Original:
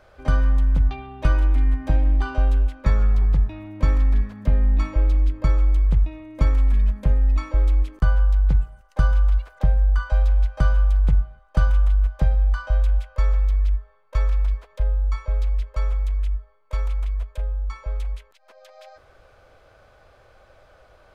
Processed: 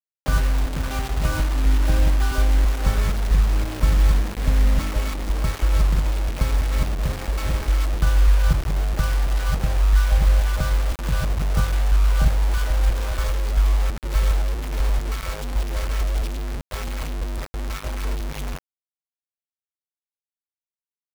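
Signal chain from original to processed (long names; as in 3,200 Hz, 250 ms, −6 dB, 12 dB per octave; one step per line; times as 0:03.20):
delay that plays each chunk backwards 331 ms, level −1.5 dB
hum removal 46.43 Hz, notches 8
bit reduction 5 bits
level −1 dB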